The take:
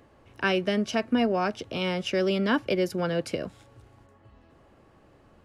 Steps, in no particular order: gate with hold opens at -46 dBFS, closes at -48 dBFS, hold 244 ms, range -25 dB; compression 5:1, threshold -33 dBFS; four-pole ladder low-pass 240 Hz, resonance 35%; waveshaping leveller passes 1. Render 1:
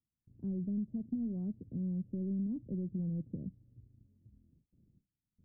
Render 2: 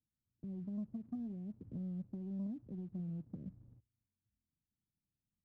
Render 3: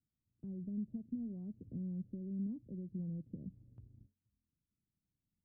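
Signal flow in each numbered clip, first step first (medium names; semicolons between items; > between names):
gate with hold > waveshaping leveller > four-pole ladder low-pass > compression; compression > four-pole ladder low-pass > gate with hold > waveshaping leveller; compression > waveshaping leveller > four-pole ladder low-pass > gate with hold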